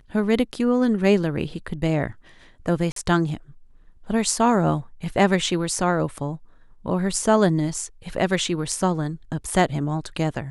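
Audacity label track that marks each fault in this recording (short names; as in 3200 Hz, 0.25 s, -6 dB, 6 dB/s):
2.920000	2.960000	gap 43 ms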